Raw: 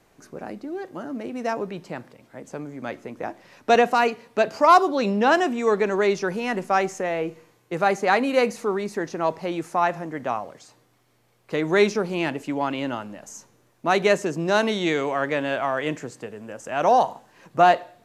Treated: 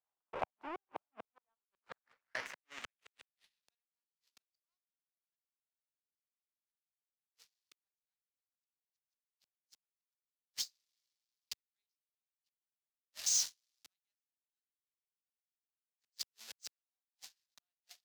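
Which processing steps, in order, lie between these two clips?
zero-crossing step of -26 dBFS; gate with hold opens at -27 dBFS; low shelf 380 Hz -10.5 dB; flipped gate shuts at -24 dBFS, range -33 dB; band-pass sweep 900 Hz -> 4800 Hz, 1.29–3.89; power-law curve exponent 2; three-band expander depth 40%; gain +7.5 dB

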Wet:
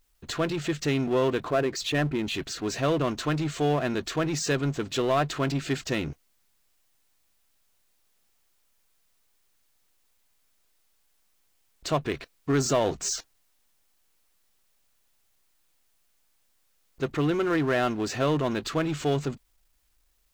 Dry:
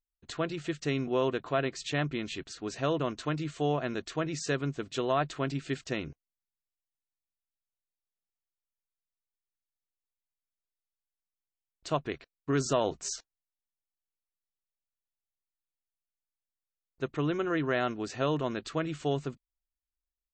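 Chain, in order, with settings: 1.48–2.34 formant sharpening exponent 1.5; power-law curve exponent 0.7; gain +1 dB

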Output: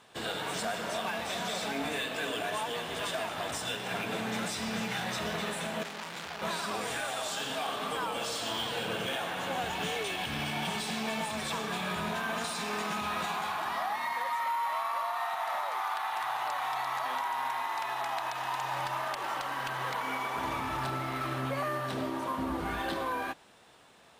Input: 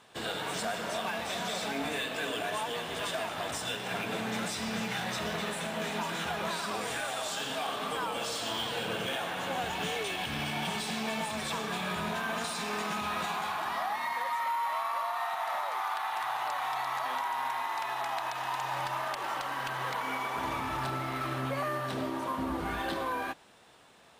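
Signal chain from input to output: 5.83–6.42 core saturation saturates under 3400 Hz

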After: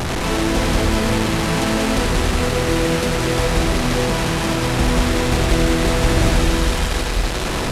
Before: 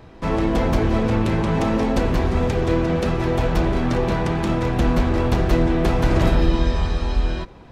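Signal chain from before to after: delta modulation 64 kbps, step -16 dBFS; thin delay 94 ms, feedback 83%, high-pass 1500 Hz, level -7.5 dB; on a send at -10 dB: reverb RT60 0.40 s, pre-delay 86 ms; 6.33–6.82 on the sum: requantised 10-bit, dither none; Doppler distortion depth 0.15 ms

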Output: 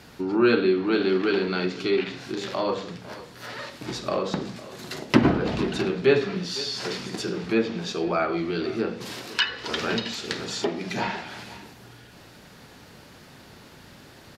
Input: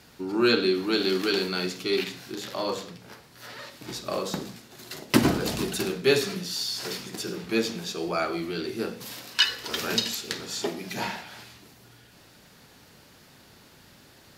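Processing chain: high shelf 3800 Hz -6.5 dB; echo 0.503 s -20 dB; in parallel at -3 dB: compressor, threshold -36 dBFS, peak gain reduction 20.5 dB; 9.52–10.45 on the sum: modulation noise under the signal 20 dB; treble ducked by the level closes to 2800 Hz, closed at -22 dBFS; gain +2 dB

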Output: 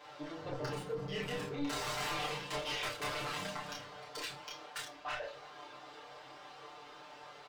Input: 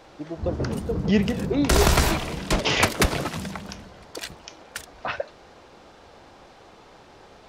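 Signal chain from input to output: median filter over 3 samples; HPF 1300 Hz 6 dB/oct; high shelf 3300 Hz -8.5 dB; comb 6.8 ms, depth 98%; reverse; compressor 5:1, threshold -34 dBFS, peak gain reduction 15 dB; reverse; soft clip -33.5 dBFS, distortion -12 dB; chorus voices 6, 0.37 Hz, delay 29 ms, depth 2.2 ms; reverb RT60 0.35 s, pre-delay 5 ms, DRR 3 dB; ending taper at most 110 dB/s; gain +3 dB

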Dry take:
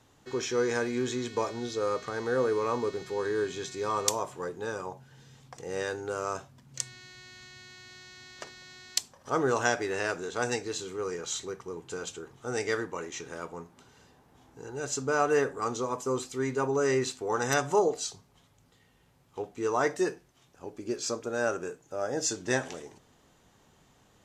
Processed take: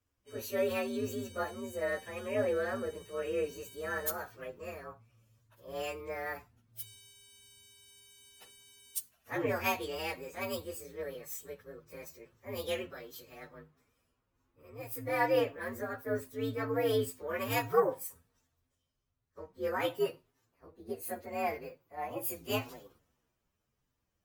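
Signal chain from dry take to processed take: inharmonic rescaling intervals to 125%; notches 50/100/150 Hz; three-band expander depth 40%; gain -3.5 dB

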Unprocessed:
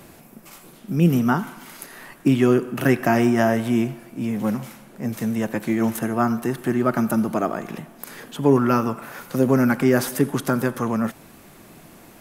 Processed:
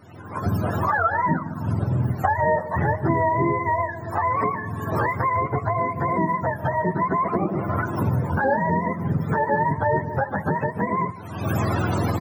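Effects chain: spectrum mirrored in octaves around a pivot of 480 Hz; recorder AGC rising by 61 dB/s; echo 0.15 s -18 dB; gain -2.5 dB

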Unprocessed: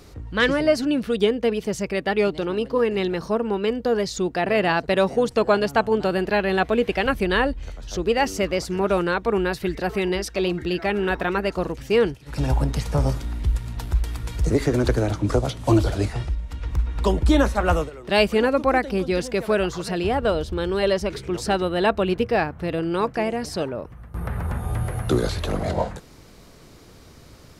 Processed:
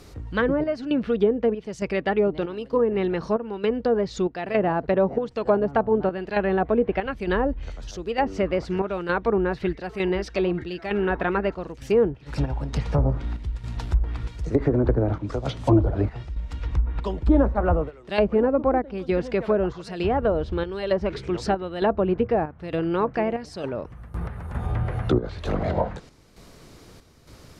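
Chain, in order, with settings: chopper 1.1 Hz, depth 60%, duty 70%; treble ducked by the level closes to 830 Hz, closed at -16 dBFS

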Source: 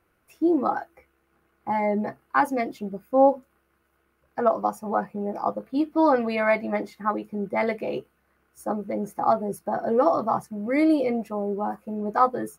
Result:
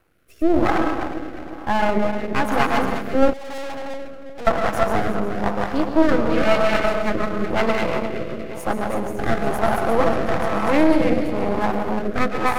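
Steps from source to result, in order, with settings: regenerating reverse delay 0.179 s, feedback 58%, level -3.5 dB; digital reverb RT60 1.2 s, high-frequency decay 0.95×, pre-delay 80 ms, DRR 5.5 dB; 3.33–4.47 tube stage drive 33 dB, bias 0.3; half-wave rectifier; rotary speaker horn 1 Hz; in parallel at -2 dB: compressor, threshold -34 dBFS, peak gain reduction 17 dB; on the sum: gain +6.5 dB

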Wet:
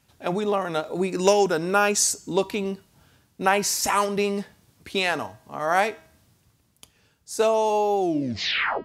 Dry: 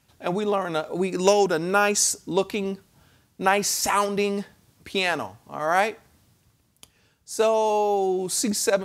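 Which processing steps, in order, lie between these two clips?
tape stop at the end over 0.85 s; de-hum 320.3 Hz, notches 25

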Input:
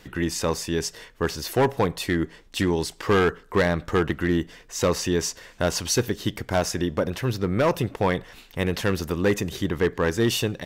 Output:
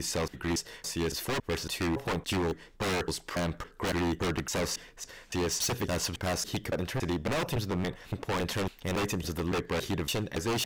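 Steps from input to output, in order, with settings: slices in reverse order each 0.28 s, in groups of 2; wavefolder -20 dBFS; gain -3.5 dB

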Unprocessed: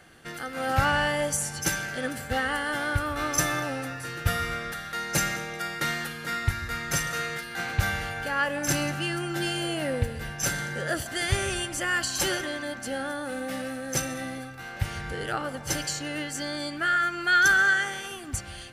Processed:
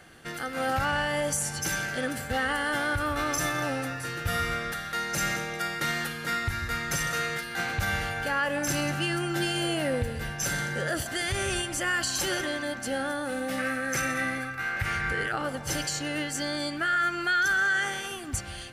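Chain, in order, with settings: 13.58–15.32 band shelf 1700 Hz +9 dB 1.3 oct; limiter -20 dBFS, peak gain reduction 10.5 dB; gain +1.5 dB

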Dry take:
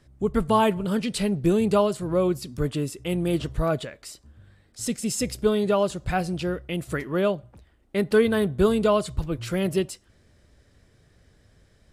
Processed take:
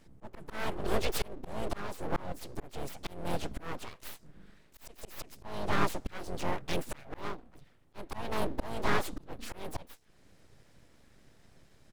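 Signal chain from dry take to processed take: harmoniser -4 st -11 dB, +4 st -8 dB, +7 st -12 dB; auto swell 0.5 s; full-wave rectifier; gain -1.5 dB

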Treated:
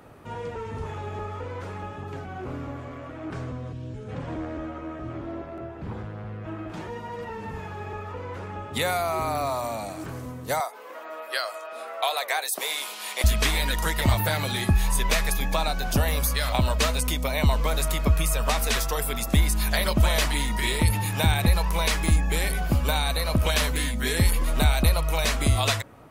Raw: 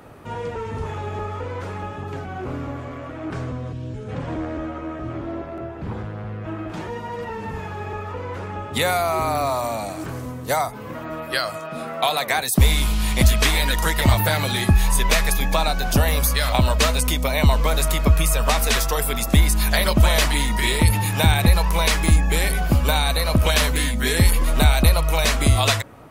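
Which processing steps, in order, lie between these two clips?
10.6–13.24 HPF 440 Hz 24 dB/oct; gain -5 dB

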